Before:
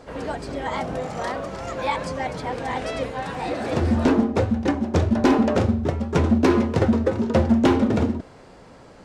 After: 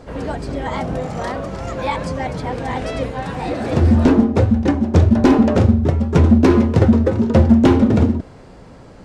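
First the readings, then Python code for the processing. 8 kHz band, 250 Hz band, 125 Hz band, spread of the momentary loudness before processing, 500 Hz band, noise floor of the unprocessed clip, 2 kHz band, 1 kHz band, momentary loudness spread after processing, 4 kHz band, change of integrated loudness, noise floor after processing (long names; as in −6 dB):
can't be measured, +6.5 dB, +9.0 dB, 11 LU, +3.5 dB, −47 dBFS, +1.5 dB, +2.5 dB, 13 LU, +1.5 dB, +6.0 dB, −41 dBFS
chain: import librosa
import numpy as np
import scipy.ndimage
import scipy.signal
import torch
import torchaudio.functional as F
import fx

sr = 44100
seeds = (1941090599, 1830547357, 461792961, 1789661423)

y = fx.low_shelf(x, sr, hz=260.0, db=9.0)
y = F.gain(torch.from_numpy(y), 1.5).numpy()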